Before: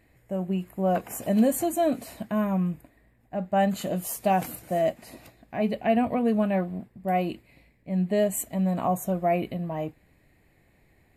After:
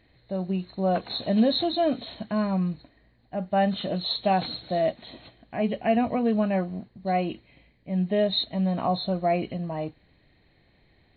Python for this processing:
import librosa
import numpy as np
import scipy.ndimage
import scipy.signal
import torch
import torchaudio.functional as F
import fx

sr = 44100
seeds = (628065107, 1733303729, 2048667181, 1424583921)

y = fx.freq_compress(x, sr, knee_hz=2900.0, ratio=4.0)